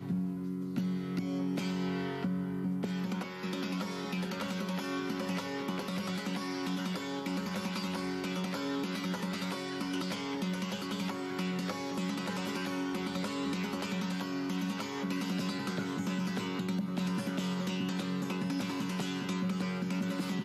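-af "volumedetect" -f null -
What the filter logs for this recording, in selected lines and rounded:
mean_volume: -34.6 dB
max_volume: -21.3 dB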